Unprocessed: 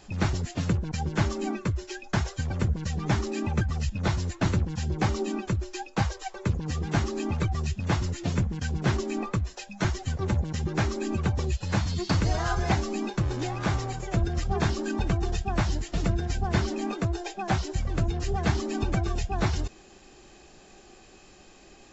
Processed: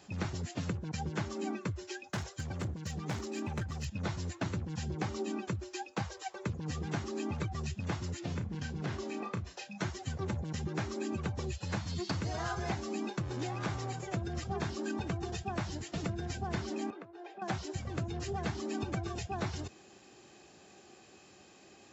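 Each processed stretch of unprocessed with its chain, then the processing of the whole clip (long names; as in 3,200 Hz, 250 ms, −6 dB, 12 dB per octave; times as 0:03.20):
0:02.09–0:03.85: high-shelf EQ 6,800 Hz +5.5 dB + hard clipping −23.5 dBFS + expander for the loud parts, over −36 dBFS
0:08.19–0:09.78: low-pass filter 6,500 Hz + downward compressor 2.5 to 1, threshold −28 dBFS + double-tracking delay 34 ms −8 dB
0:16.90–0:17.42: downward compressor 8 to 1, threshold −37 dBFS + band-pass filter 270–2,400 Hz
whole clip: high-pass filter 85 Hz 24 dB per octave; downward compressor, threshold −27 dBFS; level −4.5 dB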